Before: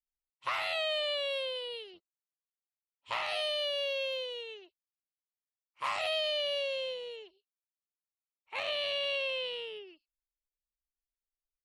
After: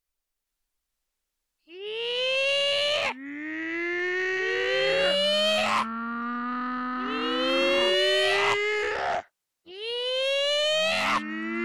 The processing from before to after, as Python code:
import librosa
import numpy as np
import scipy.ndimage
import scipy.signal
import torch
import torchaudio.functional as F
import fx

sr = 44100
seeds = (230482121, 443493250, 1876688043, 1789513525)

y = np.flip(x).copy()
y = fx.fold_sine(y, sr, drive_db=6, ceiling_db=-18.5)
y = fx.echo_pitch(y, sr, ms=469, semitones=-7, count=2, db_per_echo=-3.0)